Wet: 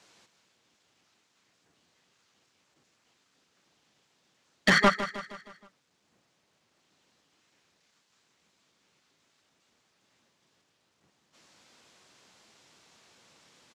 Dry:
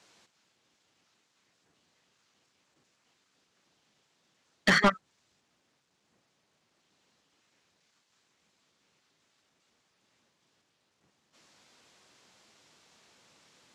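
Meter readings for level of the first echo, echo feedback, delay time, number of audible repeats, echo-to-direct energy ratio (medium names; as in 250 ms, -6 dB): -12.0 dB, 50%, 157 ms, 4, -11.0 dB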